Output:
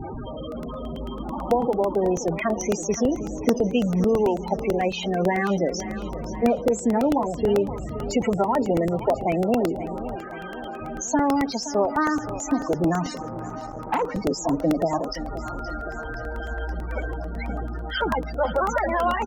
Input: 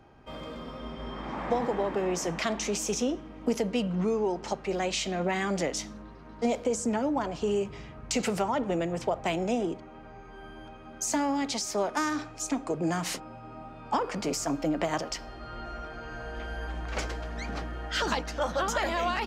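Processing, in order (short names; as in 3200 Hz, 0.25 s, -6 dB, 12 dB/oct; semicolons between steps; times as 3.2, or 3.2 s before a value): delta modulation 64 kbps, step -31 dBFS; 10.15–10.8 HPF 1200 Hz -> 330 Hz 6 dB/oct; loudest bins only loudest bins 16; feedback echo 0.522 s, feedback 56%, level -13.5 dB; crackling interface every 0.11 s, samples 64, repeat, from 0.52; 13.22–14.02 core saturation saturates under 940 Hz; gain +7 dB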